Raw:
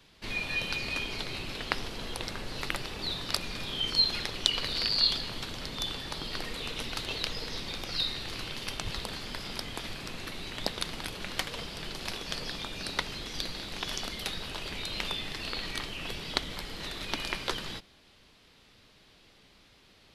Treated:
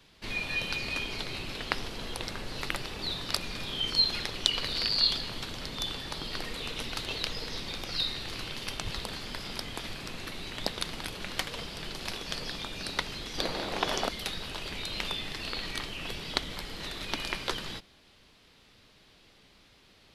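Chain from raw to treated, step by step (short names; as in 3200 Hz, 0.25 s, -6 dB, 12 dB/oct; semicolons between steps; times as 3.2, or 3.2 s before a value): 13.38–14.09 bell 640 Hz +13 dB 2.6 oct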